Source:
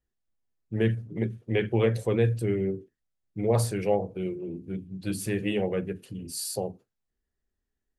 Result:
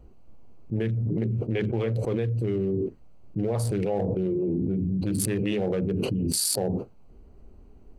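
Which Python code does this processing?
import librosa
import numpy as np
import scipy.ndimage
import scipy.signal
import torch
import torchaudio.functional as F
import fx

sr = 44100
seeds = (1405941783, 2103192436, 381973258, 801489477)

y = fx.wiener(x, sr, points=25)
y = fx.env_flatten(y, sr, amount_pct=100)
y = y * librosa.db_to_amplitude(-6.0)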